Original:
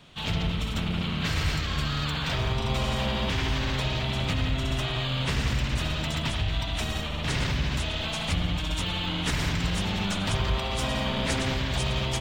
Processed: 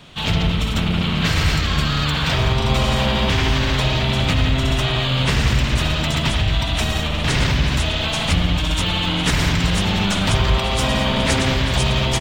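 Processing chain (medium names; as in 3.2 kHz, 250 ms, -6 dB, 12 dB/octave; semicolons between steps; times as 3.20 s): delay 890 ms -13.5 dB; trim +9 dB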